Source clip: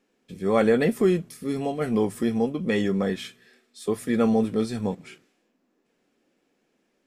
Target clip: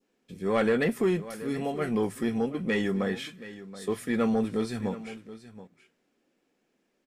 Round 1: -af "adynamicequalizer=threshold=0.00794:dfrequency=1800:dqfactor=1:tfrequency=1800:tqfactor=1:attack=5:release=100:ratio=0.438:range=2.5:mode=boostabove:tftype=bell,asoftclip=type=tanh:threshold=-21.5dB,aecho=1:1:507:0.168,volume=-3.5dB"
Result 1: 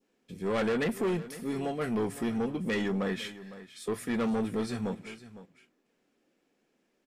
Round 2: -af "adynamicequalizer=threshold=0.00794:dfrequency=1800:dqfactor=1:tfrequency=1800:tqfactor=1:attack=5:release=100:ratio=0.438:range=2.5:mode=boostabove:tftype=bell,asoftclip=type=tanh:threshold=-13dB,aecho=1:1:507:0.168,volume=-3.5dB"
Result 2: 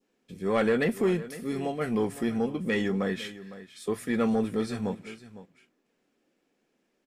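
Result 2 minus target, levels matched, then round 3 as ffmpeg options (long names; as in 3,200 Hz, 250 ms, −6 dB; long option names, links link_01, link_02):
echo 219 ms early
-af "adynamicequalizer=threshold=0.00794:dfrequency=1800:dqfactor=1:tfrequency=1800:tqfactor=1:attack=5:release=100:ratio=0.438:range=2.5:mode=boostabove:tftype=bell,asoftclip=type=tanh:threshold=-13dB,aecho=1:1:726:0.168,volume=-3.5dB"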